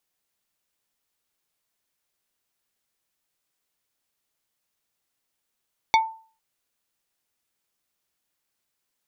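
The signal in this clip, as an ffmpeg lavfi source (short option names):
-f lavfi -i "aevalsrc='0.251*pow(10,-3*t/0.41)*sin(2*PI*891*t)+0.158*pow(10,-3*t/0.137)*sin(2*PI*2227.5*t)+0.1*pow(10,-3*t/0.078)*sin(2*PI*3564*t)+0.0631*pow(10,-3*t/0.059)*sin(2*PI*4455*t)+0.0398*pow(10,-3*t/0.043)*sin(2*PI*5791.5*t)':d=0.45:s=44100"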